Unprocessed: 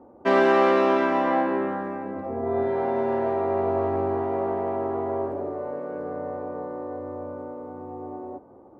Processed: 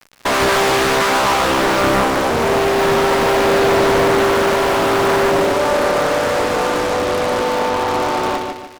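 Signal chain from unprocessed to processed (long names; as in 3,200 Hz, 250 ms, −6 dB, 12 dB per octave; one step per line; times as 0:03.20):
high-shelf EQ 2,200 Hz −11.5 dB
surface crackle 110 per second −33 dBFS
flat-topped bell 1,500 Hz +10 dB
fuzz pedal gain 40 dB, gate −41 dBFS
noise gate −24 dBFS, range −13 dB
repeating echo 147 ms, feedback 39%, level −4.5 dB
highs frequency-modulated by the lows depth 0.84 ms
level −2 dB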